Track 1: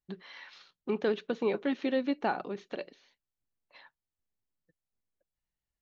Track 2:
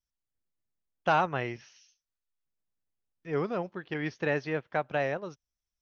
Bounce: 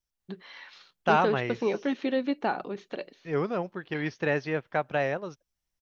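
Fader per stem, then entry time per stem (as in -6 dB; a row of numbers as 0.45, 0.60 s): +2.0, +2.0 dB; 0.20, 0.00 s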